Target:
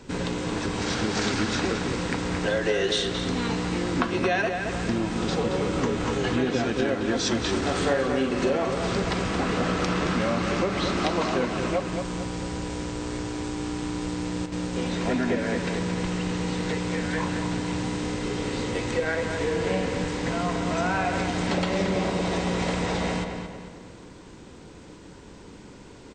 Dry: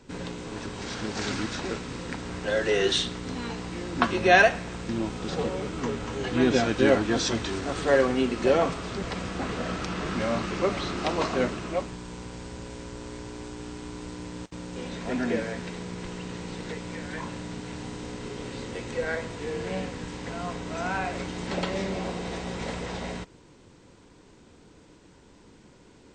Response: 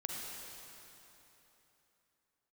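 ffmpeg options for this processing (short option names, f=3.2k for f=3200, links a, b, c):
-filter_complex "[0:a]acompressor=threshold=-29dB:ratio=10,asettb=1/sr,asplit=3[a][b][c];[a]atrim=end=7.584[d];[b]atrim=start=7.58:end=9.04,asetpts=PTS-STARTPTS,afade=t=in:d=0.004:c=qsin,afade=t=out:st=1.456:d=0.004:c=qsin,asplit=2[e][f];[f]adelay=45,volume=-7dB[g];[e][g]amix=inputs=2:normalize=0,atrim=end_sample=64386[h];[c]atrim=start=9.036[i];[d][h]acrossfade=d=0.004:c1=hsin:c2=qsin[j];[j][i]acrossfade=d=0.004:c1=qsin:c2=hsin,asplit=2[k][l];[l]adelay=223,lowpass=f=3.9k:p=1,volume=-6dB,asplit=2[m][n];[n]adelay=223,lowpass=f=3.9k:p=1,volume=0.45,asplit=2[o][p];[p]adelay=223,lowpass=f=3.9k:p=1,volume=0.45,asplit=2[q][r];[r]adelay=223,lowpass=f=3.9k:p=1,volume=0.45,asplit=2[s][t];[t]adelay=223,lowpass=f=3.9k:p=1,volume=0.45[u];[k][m][o][q][s][u]amix=inputs=6:normalize=0,volume=7dB"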